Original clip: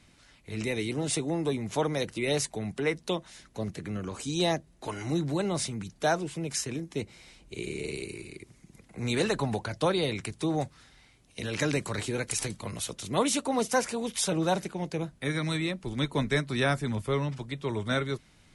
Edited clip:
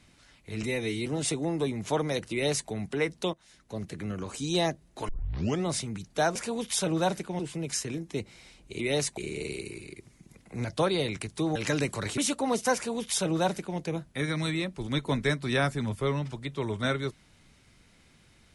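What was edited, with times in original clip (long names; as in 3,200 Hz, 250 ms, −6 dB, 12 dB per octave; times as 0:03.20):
0:00.63–0:00.92: time-stretch 1.5×
0:02.17–0:02.55: duplicate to 0:07.61
0:03.19–0:03.82: fade in linear, from −14.5 dB
0:04.94: tape start 0.57 s
0:09.08–0:09.68: remove
0:10.59–0:11.48: remove
0:12.10–0:13.24: remove
0:13.81–0:14.85: duplicate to 0:06.21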